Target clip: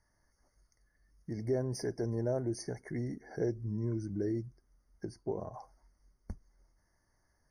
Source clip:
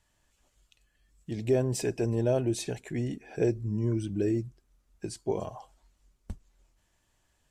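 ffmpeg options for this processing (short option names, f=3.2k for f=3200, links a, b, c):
-filter_complex "[0:a]asettb=1/sr,asplit=3[a][b][c];[a]atrim=end=5.054[d];[b]atrim=start=5.05:end=5.54,asetpts=PTS-STARTPTS,afade=t=in:d=0.004:c=qsin,afade=t=out:st=0.486:d=0.004:c=qsin,highshelf=f=2.1k:g=-11.5[e];[c]atrim=start=5.536[f];[d][e]acrossfade=d=0.004:c1=hsin:c2=qsin[g];[g][f]acrossfade=d=0.004:c1=qsin:c2=hsin,asplit=2[h][i];[i]acompressor=threshold=-36dB:ratio=6,volume=2.5dB[j];[h][j]amix=inputs=2:normalize=0,afftfilt=real='re*eq(mod(floor(b*sr/1024/2200),2),0)':imag='im*eq(mod(floor(b*sr/1024/2200),2),0)':win_size=1024:overlap=0.75,volume=-9dB"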